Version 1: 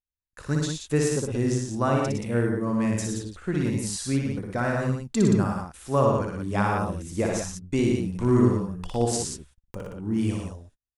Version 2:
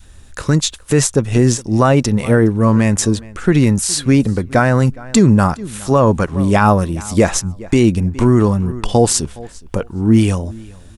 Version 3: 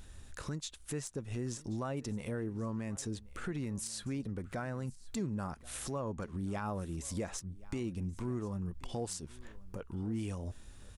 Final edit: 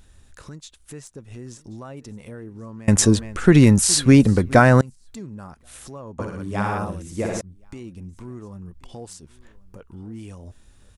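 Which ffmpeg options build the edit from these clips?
-filter_complex "[2:a]asplit=3[s0][s1][s2];[s0]atrim=end=2.882[s3];[1:a]atrim=start=2.878:end=4.812[s4];[s1]atrim=start=4.808:end=6.192[s5];[0:a]atrim=start=6.188:end=7.412[s6];[s2]atrim=start=7.408[s7];[s3][s4]acrossfade=d=0.004:c1=hsin:c2=hsin[s8];[s8][s5]acrossfade=d=0.004:c1=hsin:c2=hsin[s9];[s9][s6]acrossfade=d=0.004:c1=hsin:c2=hsin[s10];[s10][s7]acrossfade=d=0.004:c1=hsin:c2=hsin"

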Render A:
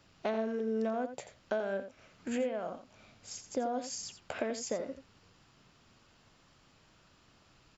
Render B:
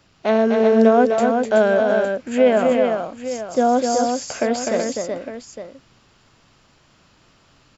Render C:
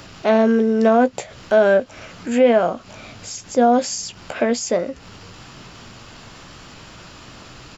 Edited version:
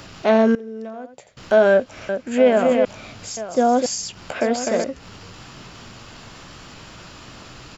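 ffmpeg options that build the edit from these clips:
-filter_complex "[1:a]asplit=3[s0][s1][s2];[2:a]asplit=5[s3][s4][s5][s6][s7];[s3]atrim=end=0.552[s8];[0:a]atrim=start=0.548:end=1.372[s9];[s4]atrim=start=1.368:end=2.092[s10];[s0]atrim=start=2.088:end=2.852[s11];[s5]atrim=start=2.848:end=3.372[s12];[s1]atrim=start=3.368:end=3.862[s13];[s6]atrim=start=3.858:end=4.412[s14];[s2]atrim=start=4.408:end=4.842[s15];[s7]atrim=start=4.838[s16];[s8][s9]acrossfade=d=0.004:c1=hsin:c2=hsin[s17];[s17][s10]acrossfade=d=0.004:c1=hsin:c2=hsin[s18];[s18][s11]acrossfade=d=0.004:c1=hsin:c2=hsin[s19];[s19][s12]acrossfade=d=0.004:c1=hsin:c2=hsin[s20];[s20][s13]acrossfade=d=0.004:c1=hsin:c2=hsin[s21];[s21][s14]acrossfade=d=0.004:c1=hsin:c2=hsin[s22];[s22][s15]acrossfade=d=0.004:c1=hsin:c2=hsin[s23];[s23][s16]acrossfade=d=0.004:c1=hsin:c2=hsin"

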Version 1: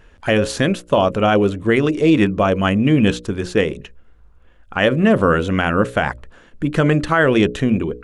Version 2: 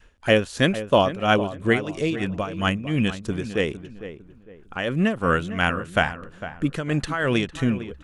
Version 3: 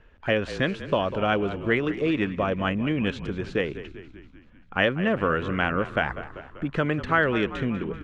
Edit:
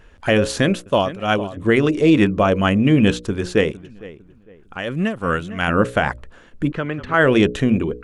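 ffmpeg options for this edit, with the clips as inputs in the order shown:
-filter_complex "[1:a]asplit=2[s0][s1];[0:a]asplit=4[s2][s3][s4][s5];[s2]atrim=end=0.862[s6];[s0]atrim=start=0.858:end=1.572[s7];[s3]atrim=start=1.568:end=3.712[s8];[s1]atrim=start=3.708:end=5.682[s9];[s4]atrim=start=5.678:end=6.722[s10];[2:a]atrim=start=6.718:end=7.142[s11];[s5]atrim=start=7.138[s12];[s6][s7]acrossfade=d=0.004:c1=hsin:c2=hsin[s13];[s13][s8]acrossfade=d=0.004:c1=hsin:c2=hsin[s14];[s14][s9]acrossfade=d=0.004:c1=hsin:c2=hsin[s15];[s15][s10]acrossfade=d=0.004:c1=hsin:c2=hsin[s16];[s16][s11]acrossfade=d=0.004:c1=hsin:c2=hsin[s17];[s17][s12]acrossfade=d=0.004:c1=hsin:c2=hsin"

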